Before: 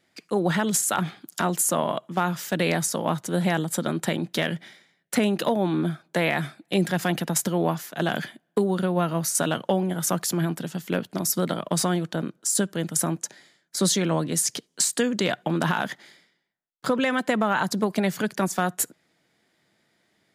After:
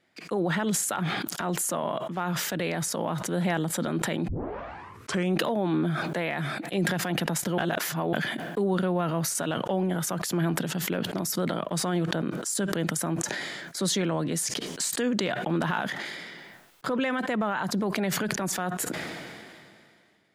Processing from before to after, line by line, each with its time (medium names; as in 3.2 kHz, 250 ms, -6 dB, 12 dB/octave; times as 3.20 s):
4.28 s: tape start 1.11 s
7.58–8.13 s: reverse
whole clip: tone controls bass -2 dB, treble -7 dB; peak limiter -18.5 dBFS; decay stretcher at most 27 dB/s